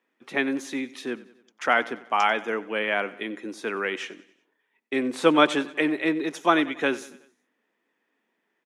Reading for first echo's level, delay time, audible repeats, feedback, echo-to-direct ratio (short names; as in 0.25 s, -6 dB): -19.0 dB, 93 ms, 3, 51%, -17.5 dB